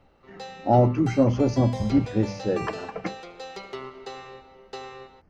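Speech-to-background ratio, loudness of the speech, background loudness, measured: 15.5 dB, -23.5 LUFS, -39.0 LUFS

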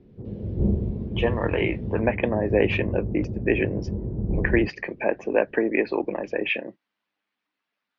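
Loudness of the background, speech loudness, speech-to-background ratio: -29.5 LUFS, -25.5 LUFS, 4.0 dB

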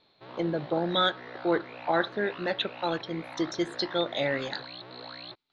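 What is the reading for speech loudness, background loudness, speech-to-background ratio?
-30.0 LUFS, -43.0 LUFS, 13.0 dB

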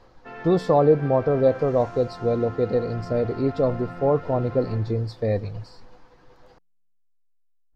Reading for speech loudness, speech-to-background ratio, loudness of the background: -23.0 LUFS, 16.0 dB, -39.0 LUFS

